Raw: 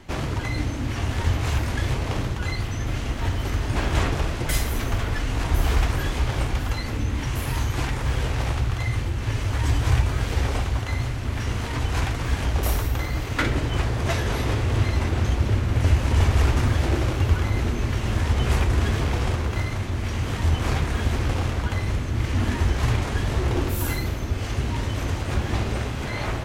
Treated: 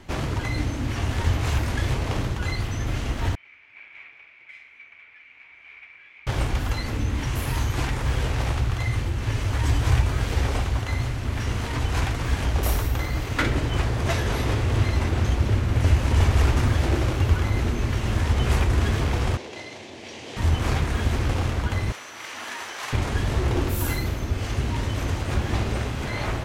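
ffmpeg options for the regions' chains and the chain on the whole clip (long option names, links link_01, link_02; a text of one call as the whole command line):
ffmpeg -i in.wav -filter_complex "[0:a]asettb=1/sr,asplit=3[link_01][link_02][link_03];[link_01]atrim=end=3.354[link_04];[link_02]atrim=start=3.35:end=6.27,asetpts=PTS-STARTPTS,afade=type=in:duration=0.004:curve=qsin,afade=type=out:start_time=2.916:duration=0.004:curve=qsin,bandpass=frequency=2300:width_type=q:width=16,aemphasis=mode=reproduction:type=50fm,asplit=2[link_05][link_06];[link_06]adelay=43,volume=-12.5dB[link_07];[link_05][link_07]amix=inputs=2:normalize=0,atrim=end_sample=128772[link_08];[link_03]atrim=start=6.266[link_09];[link_04][link_08]acrossfade=duration=0.004:curve1=hsin:curve2=qsin[link_10];[link_10][link_09]acrossfade=duration=0.004:curve1=qsin:curve2=hsin,asettb=1/sr,asplit=3[link_11][link_12][link_13];[link_11]atrim=end=19.374[link_14];[link_12]atrim=start=19.37:end=20.37,asetpts=PTS-STARTPTS,afade=type=in:duration=0.004:curve=qsin,afade=type=out:start_time=0.996:duration=0.004:curve=qsin,highpass=420,lowpass=6300,equalizer=frequency=1300:width_type=o:width=0.94:gain=-14.5[link_15];[link_13]atrim=start=20.366[link_16];[link_14][link_15]acrossfade=duration=0.004:curve1=hsin:curve2=qsin[link_17];[link_17][link_16]acrossfade=duration=0.004:curve1=qsin:curve2=hsin,asettb=1/sr,asplit=3[link_18][link_19][link_20];[link_18]atrim=end=21.924[link_21];[link_19]atrim=start=21.92:end=22.93,asetpts=PTS-STARTPTS,afade=type=in:duration=0.004:curve=qsin,afade=type=out:start_time=1.006:duration=0.004:curve=qsin,highpass=820,aeval=exprs='val(0)+0.00316*sin(2*PI*5900*n/s)':channel_layout=same[link_22];[link_20]atrim=start=22.926[link_23];[link_21][link_22]acrossfade=duration=0.004:curve1=hsin:curve2=qsin[link_24];[link_24][link_23]acrossfade=duration=0.004:curve1=qsin:curve2=hsin" out.wav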